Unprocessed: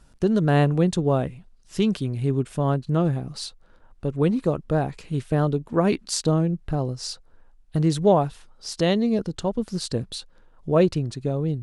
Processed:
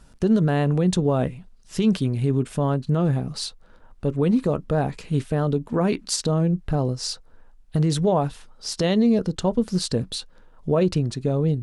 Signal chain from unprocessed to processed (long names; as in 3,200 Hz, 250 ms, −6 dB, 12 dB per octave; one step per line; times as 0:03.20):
brickwall limiter −16 dBFS, peak gain reduction 9 dB
on a send: convolution reverb, pre-delay 3 ms, DRR 16 dB
on the sum: level +3.5 dB